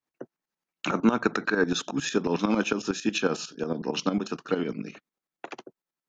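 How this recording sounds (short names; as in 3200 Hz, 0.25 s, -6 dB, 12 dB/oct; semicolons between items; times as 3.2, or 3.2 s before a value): tremolo saw up 11 Hz, depth 75%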